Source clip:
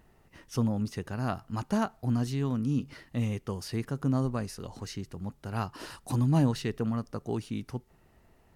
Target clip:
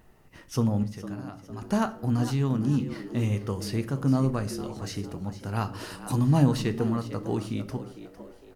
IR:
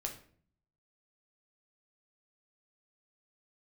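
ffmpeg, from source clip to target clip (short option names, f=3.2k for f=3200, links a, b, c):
-filter_complex "[0:a]asettb=1/sr,asplit=3[a][b][c];[a]atrim=end=0.834[d];[b]atrim=start=0.83:end=1.62,asetpts=PTS-STARTPTS,afade=t=in:d=0.004:c=qsin,afade=t=out:st=0.786:d=0.004:c=qsin,acompressor=threshold=-40dB:ratio=12[e];[c]atrim=start=1.616[f];[d][e]acrossfade=d=0.004:c1=hsin:c2=qsin[g];[g][f]acrossfade=d=0.004:c1=qsin:c2=hsin,asplit=5[h][i][j][k][l];[i]adelay=455,afreqshift=84,volume=-13.5dB[m];[j]adelay=910,afreqshift=168,volume=-21.2dB[n];[k]adelay=1365,afreqshift=252,volume=-29dB[o];[l]adelay=1820,afreqshift=336,volume=-36.7dB[p];[h][m][n][o][p]amix=inputs=5:normalize=0,asplit=2[q][r];[1:a]atrim=start_sample=2205,highshelf=f=11k:g=6[s];[r][s]afir=irnorm=-1:irlink=0,volume=-1.5dB[t];[q][t]amix=inputs=2:normalize=0,volume=-1.5dB"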